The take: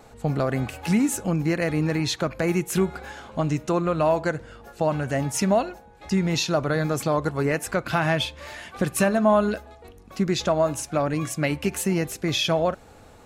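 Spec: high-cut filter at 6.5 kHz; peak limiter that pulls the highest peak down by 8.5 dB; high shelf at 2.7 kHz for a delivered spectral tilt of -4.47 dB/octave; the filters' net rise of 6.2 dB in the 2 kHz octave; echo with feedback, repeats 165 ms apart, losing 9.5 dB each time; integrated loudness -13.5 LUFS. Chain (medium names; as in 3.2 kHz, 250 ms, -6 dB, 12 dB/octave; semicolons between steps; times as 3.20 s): low-pass 6.5 kHz; peaking EQ 2 kHz +5 dB; treble shelf 2.7 kHz +7 dB; peak limiter -14.5 dBFS; feedback delay 165 ms, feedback 33%, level -9.5 dB; trim +11 dB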